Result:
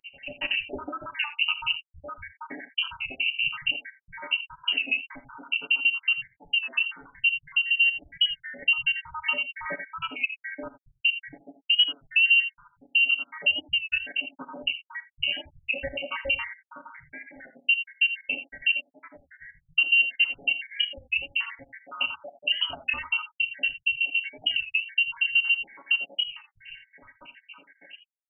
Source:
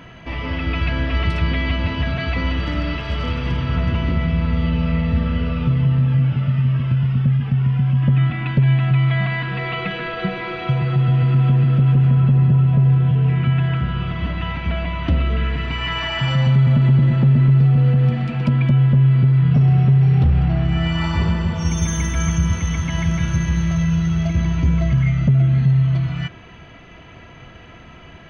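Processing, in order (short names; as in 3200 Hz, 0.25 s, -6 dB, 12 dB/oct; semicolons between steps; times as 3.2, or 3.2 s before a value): random spectral dropouts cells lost 85%; HPF 71 Hz 12 dB/oct; low shelf 110 Hz +7 dB; comb 7.3 ms, depth 69%; dynamic EQ 150 Hz, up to -4 dB, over -20 dBFS, Q 0.75; compressor 2:1, threshold -20 dBFS, peak gain reduction 7 dB; non-linear reverb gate 0.1 s rising, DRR 11 dB; inverted band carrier 2900 Hz; record warp 33 1/3 rpm, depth 100 cents; gain -2.5 dB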